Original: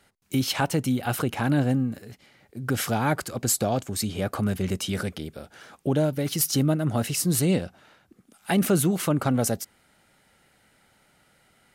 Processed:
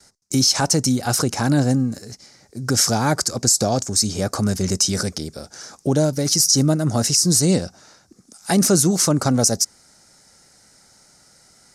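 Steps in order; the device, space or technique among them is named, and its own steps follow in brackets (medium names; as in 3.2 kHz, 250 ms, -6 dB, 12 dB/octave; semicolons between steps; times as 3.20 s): gate with hold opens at -56 dBFS; low-pass 7.7 kHz 12 dB/octave; over-bright horn tweeter (resonant high shelf 4.1 kHz +11 dB, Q 3; peak limiter -11 dBFS, peak gain reduction 10.5 dB); trim +5 dB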